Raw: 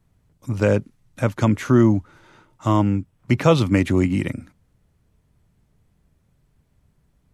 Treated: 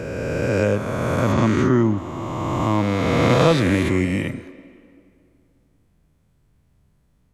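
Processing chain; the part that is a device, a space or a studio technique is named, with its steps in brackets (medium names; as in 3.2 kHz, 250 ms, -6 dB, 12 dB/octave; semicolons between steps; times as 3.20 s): reverse spectral sustain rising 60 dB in 2.93 s; 1.32–1.98 s: low-pass 6.5 kHz 12 dB/octave; filtered reverb send (on a send: high-pass 240 Hz 24 dB/octave + low-pass 5.8 kHz + reverberation RT60 2.4 s, pre-delay 56 ms, DRR 14.5 dB); on the sum: trim -3.5 dB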